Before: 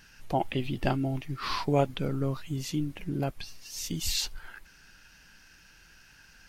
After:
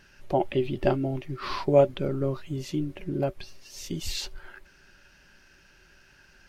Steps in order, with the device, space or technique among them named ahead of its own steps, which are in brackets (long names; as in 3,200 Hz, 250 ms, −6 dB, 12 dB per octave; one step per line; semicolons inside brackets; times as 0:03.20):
inside a helmet (high-shelf EQ 5,400 Hz −8.5 dB; hollow resonant body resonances 380/570 Hz, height 13 dB, ringing for 90 ms)